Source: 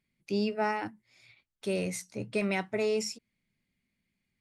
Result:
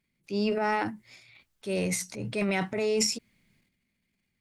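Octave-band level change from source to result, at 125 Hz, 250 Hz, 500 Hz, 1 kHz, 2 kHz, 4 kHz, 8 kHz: +3.5 dB, +2.5 dB, +1.5 dB, +3.0 dB, +3.0 dB, +6.5 dB, +9.0 dB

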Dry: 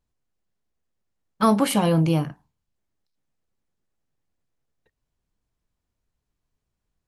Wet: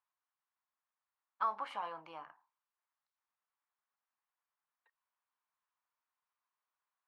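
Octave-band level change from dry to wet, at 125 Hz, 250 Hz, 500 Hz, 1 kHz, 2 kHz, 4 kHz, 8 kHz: under -40 dB, under -40 dB, -25.5 dB, -11.5 dB, -15.0 dB, -23.0 dB, under -35 dB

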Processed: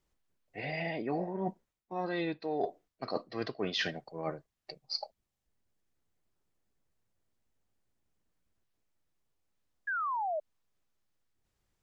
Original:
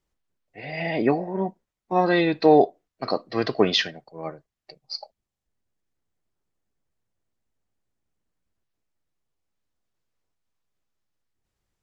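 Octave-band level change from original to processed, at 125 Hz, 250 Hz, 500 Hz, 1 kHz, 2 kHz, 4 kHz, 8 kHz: -10.0 dB, -13.5 dB, -13.5 dB, -10.0 dB, -7.0 dB, -10.0 dB, no reading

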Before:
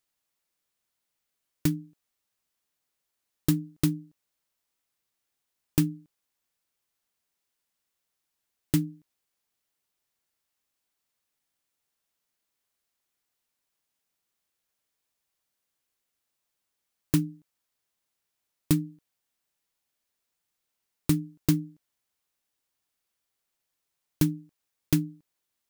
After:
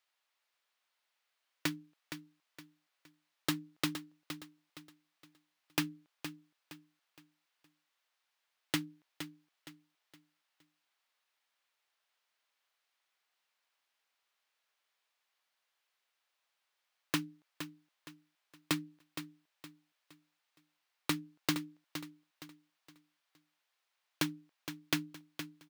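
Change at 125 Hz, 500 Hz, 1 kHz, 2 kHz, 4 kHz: -16.5 dB, -6.0 dB, +5.0 dB, +5.5 dB, +3.0 dB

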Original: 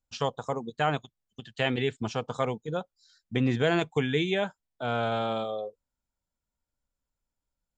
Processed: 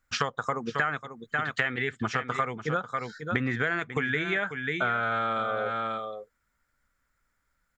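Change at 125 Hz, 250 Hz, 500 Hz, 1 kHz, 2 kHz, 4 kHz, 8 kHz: -3.0 dB, -3.5 dB, -3.5 dB, +3.0 dB, +7.5 dB, -2.5 dB, no reading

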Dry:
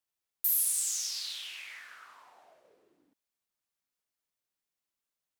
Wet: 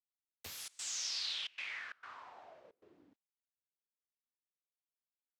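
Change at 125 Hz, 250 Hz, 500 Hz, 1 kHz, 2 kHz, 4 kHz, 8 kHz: no reading, +5.5 dB, +4.0 dB, +2.5 dB, +2.0 dB, -1.0 dB, -12.0 dB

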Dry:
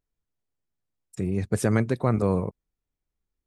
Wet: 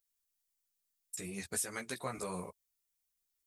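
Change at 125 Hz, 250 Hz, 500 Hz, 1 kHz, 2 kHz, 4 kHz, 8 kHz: -24.0 dB, -19.5 dB, -16.5 dB, -10.5 dB, -7.5 dB, -0.5 dB, +2.0 dB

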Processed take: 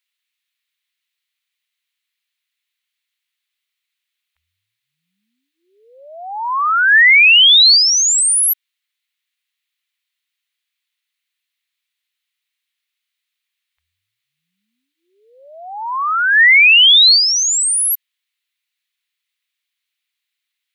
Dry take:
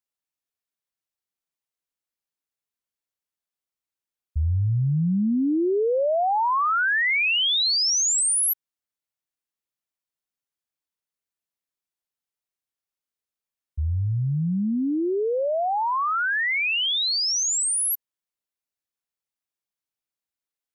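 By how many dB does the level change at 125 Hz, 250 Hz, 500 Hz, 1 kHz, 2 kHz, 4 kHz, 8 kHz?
under -40 dB, under -40 dB, under -15 dB, +3.0 dB, +13.5 dB, +14.0 dB, +8.0 dB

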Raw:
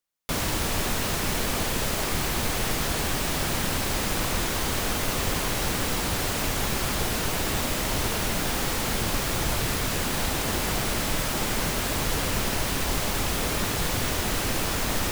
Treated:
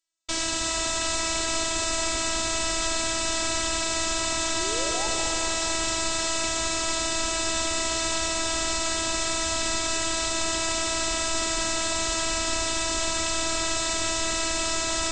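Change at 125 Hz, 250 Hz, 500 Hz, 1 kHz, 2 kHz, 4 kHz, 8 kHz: -11.5 dB, -3.5 dB, +0.5 dB, +0.5 dB, 0.0 dB, +3.5 dB, +4.5 dB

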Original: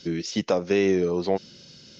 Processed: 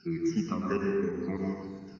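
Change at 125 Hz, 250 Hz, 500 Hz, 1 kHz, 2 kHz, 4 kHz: -3.0 dB, -3.5 dB, -9.0 dB, -5.5 dB, -7.5 dB, -16.5 dB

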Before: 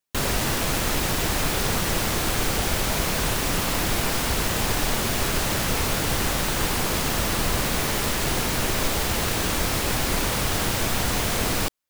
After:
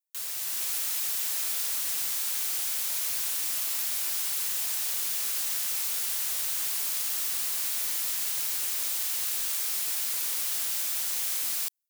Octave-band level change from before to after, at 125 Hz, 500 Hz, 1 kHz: under -35 dB, -25.5 dB, -19.5 dB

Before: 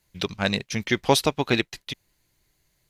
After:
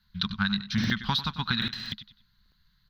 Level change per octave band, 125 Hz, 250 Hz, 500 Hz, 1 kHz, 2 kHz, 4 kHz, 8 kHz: -1.0 dB, -2.5 dB, -25.0 dB, -6.5 dB, -3.0 dB, -0.5 dB, -16.0 dB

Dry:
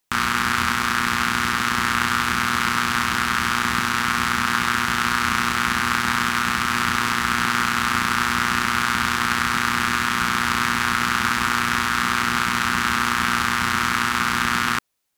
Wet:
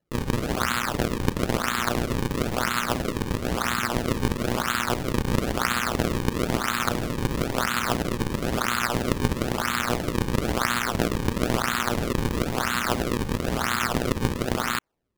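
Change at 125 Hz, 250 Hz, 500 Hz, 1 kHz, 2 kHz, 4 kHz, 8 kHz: +4.5 dB, +1.0 dB, +9.5 dB, -7.5 dB, -9.5 dB, -7.0 dB, -5.0 dB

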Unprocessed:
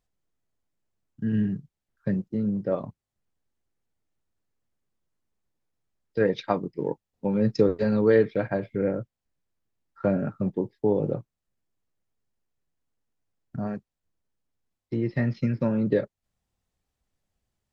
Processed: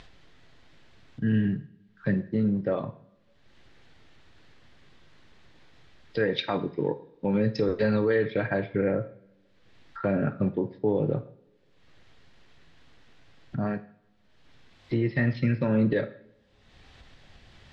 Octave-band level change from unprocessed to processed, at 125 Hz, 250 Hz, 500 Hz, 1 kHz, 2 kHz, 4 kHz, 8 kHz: +1.0 dB, -0.5 dB, -2.0 dB, -0.5 dB, +4.0 dB, +7.0 dB, no reading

